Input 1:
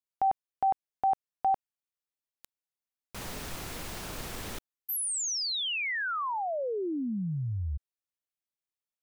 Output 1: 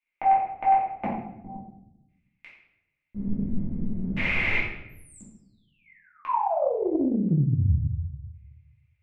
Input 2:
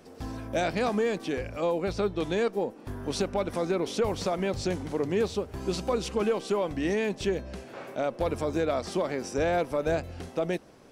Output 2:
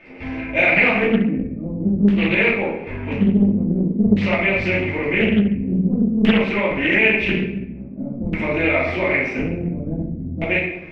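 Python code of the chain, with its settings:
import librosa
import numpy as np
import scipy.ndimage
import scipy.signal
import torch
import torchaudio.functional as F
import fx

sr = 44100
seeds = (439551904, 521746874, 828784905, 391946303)

y = fx.peak_eq(x, sr, hz=2100.0, db=14.0, octaves=0.23)
y = fx.filter_lfo_lowpass(y, sr, shape='square', hz=0.48, low_hz=210.0, high_hz=2500.0, q=6.1)
y = fx.room_shoebox(y, sr, seeds[0], volume_m3=250.0, walls='mixed', distance_m=2.6)
y = fx.doppler_dist(y, sr, depth_ms=0.51)
y = y * librosa.db_to_amplitude(-3.0)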